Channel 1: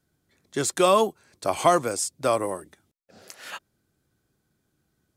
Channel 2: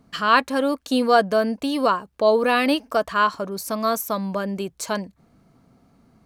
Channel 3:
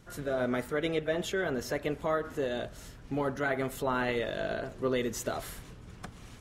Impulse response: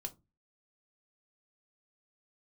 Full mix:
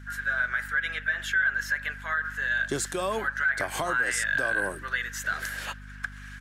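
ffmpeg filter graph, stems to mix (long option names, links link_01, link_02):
-filter_complex "[0:a]adelay=2150,volume=1.5dB[link_01];[2:a]acontrast=75,highpass=frequency=1600:width_type=q:width=13,aeval=exprs='val(0)+0.0141*(sin(2*PI*50*n/s)+sin(2*PI*2*50*n/s)/2+sin(2*PI*3*50*n/s)/3+sin(2*PI*4*50*n/s)/4+sin(2*PI*5*50*n/s)/5)':channel_layout=same,volume=-6dB[link_02];[link_01]acompressor=threshold=-26dB:ratio=6,volume=0dB[link_03];[link_02][link_03]amix=inputs=2:normalize=0,alimiter=limit=-17dB:level=0:latency=1:release=111"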